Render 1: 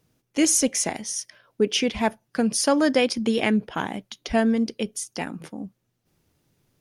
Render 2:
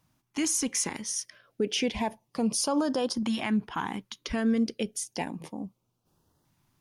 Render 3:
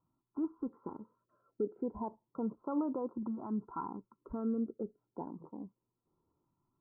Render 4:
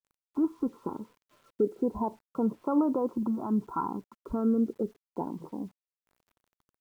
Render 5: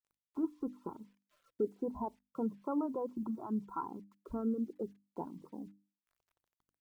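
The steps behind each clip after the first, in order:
bell 1000 Hz +8 dB 0.67 oct; limiter -15.5 dBFS, peak gain reduction 9 dB; LFO notch saw up 0.31 Hz 420–2500 Hz; gain -2.5 dB
rippled Chebyshev low-pass 1400 Hz, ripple 9 dB; gain -4 dB
requantised 12-bit, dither none; gain +8.5 dB
reverb removal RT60 0.95 s; notches 50/100/150/200/250/300 Hz; gain -7 dB

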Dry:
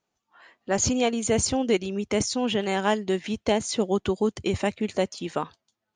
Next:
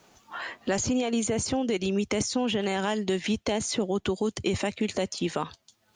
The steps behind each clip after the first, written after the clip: limiter -20 dBFS, peak gain reduction 9 dB; three-band squash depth 70%; gain +1.5 dB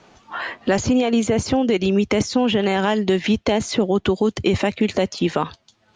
air absorption 120 m; gain +9 dB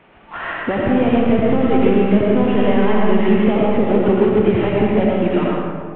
CVSD 16 kbps; digital reverb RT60 1.9 s, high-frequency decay 0.45×, pre-delay 50 ms, DRR -4 dB

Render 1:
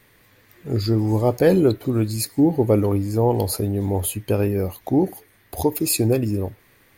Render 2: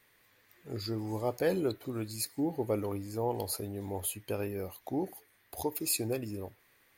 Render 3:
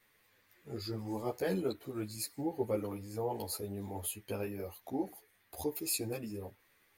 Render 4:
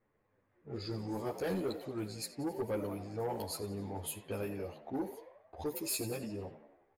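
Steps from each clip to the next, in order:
low shelf 390 Hz -10 dB; gain -9 dB
ensemble effect
frequency-shifting echo 90 ms, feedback 58%, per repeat +63 Hz, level -14 dB; low-pass opened by the level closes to 750 Hz, open at -33.5 dBFS; soft clip -30 dBFS, distortion -14 dB; gain +1 dB

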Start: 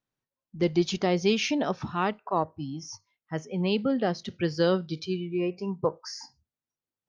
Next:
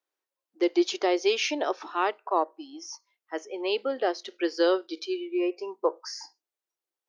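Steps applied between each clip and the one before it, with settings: elliptic high-pass 330 Hz, stop band 50 dB; gain +2 dB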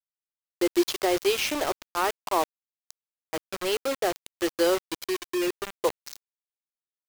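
bit-crush 5-bit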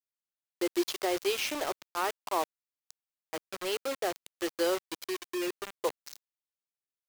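low shelf 180 Hz -7.5 dB; gain -5 dB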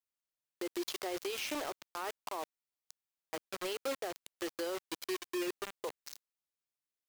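limiter -27.5 dBFS, peak gain reduction 11 dB; gain -1.5 dB

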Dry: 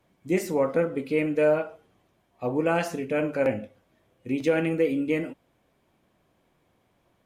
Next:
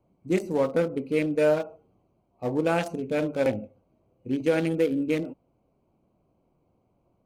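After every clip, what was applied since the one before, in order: Wiener smoothing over 25 samples; tone controls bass +1 dB, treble +9 dB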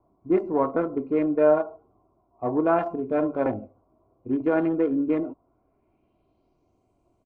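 comb 2.9 ms, depth 51%; low-pass sweep 1100 Hz -> 8200 Hz, 5.38–6.88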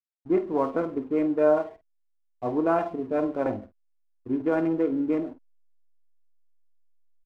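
backlash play -42.5 dBFS; doubler 49 ms -13 dB; gain -2 dB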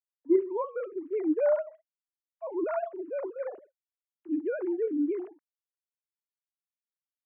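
sine-wave speech; gain -4.5 dB

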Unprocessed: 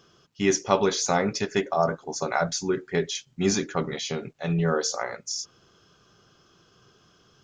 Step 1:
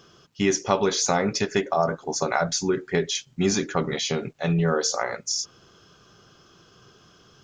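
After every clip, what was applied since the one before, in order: compressor 2:1, threshold -26 dBFS, peak gain reduction 6.5 dB; gain +5 dB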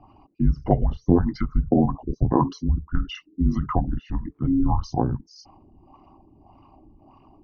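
formant sharpening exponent 2; LFO low-pass sine 1.7 Hz 680–1900 Hz; frequency shift -440 Hz; gain +1 dB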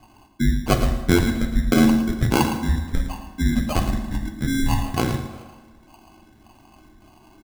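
sample-and-hold 24×; echo 0.111 s -10.5 dB; on a send at -6 dB: reverb RT60 1.4 s, pre-delay 5 ms

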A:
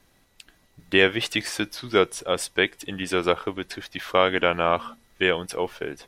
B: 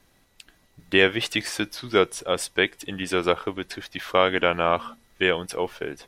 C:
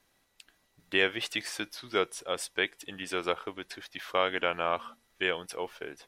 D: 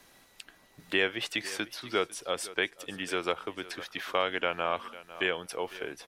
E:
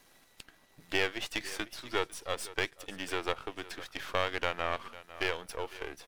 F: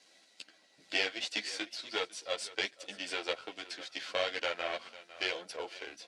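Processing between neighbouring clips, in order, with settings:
nothing audible
low shelf 300 Hz -9 dB; gain -6.5 dB
feedback echo 0.5 s, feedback 16%, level -20 dB; three-band squash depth 40%
half-wave gain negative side -12 dB
speaker cabinet 320–8400 Hz, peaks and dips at 390 Hz -7 dB, 910 Hz -9 dB, 1700 Hz -5 dB, 4500 Hz +6 dB; chorus voices 6, 1.5 Hz, delay 12 ms, depth 3 ms; notch 1200 Hz, Q 5.3; gain +4 dB

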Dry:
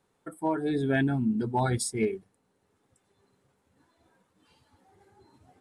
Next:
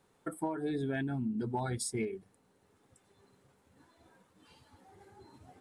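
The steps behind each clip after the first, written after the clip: compressor 16:1, threshold -34 dBFS, peak gain reduction 13.5 dB; gain +3 dB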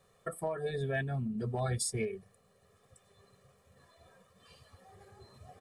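comb 1.7 ms, depth 100%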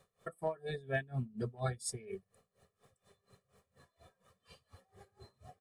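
dB-linear tremolo 4.2 Hz, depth 23 dB; gain +1 dB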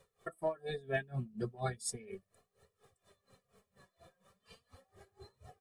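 flange 0.37 Hz, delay 2 ms, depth 3.9 ms, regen +34%; gain +4.5 dB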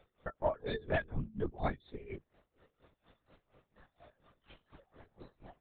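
LPC vocoder at 8 kHz whisper; gain +2.5 dB

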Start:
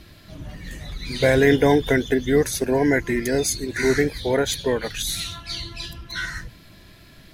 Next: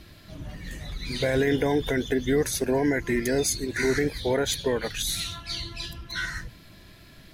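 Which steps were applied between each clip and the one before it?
limiter -12.5 dBFS, peak gain reduction 7.5 dB; gain -2 dB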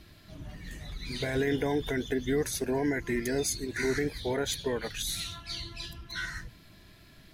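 notch 530 Hz, Q 12; gain -5 dB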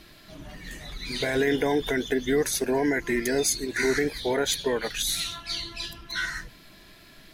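bell 84 Hz -12 dB 2 oct; gain +6.5 dB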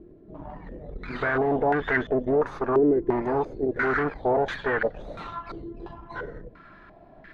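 tube stage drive 28 dB, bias 0.75; stepped low-pass 2.9 Hz 400–1700 Hz; gain +5 dB

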